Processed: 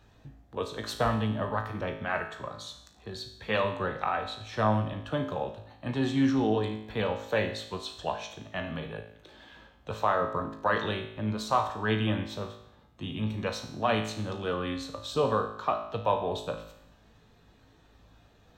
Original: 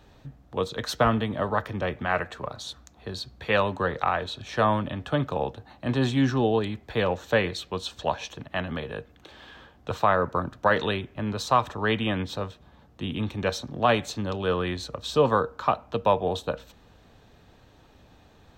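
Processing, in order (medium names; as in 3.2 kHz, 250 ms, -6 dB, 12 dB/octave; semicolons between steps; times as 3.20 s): coarse spectral quantiser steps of 15 dB; feedback comb 54 Hz, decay 0.74 s, harmonics all, mix 80%; trim +4.5 dB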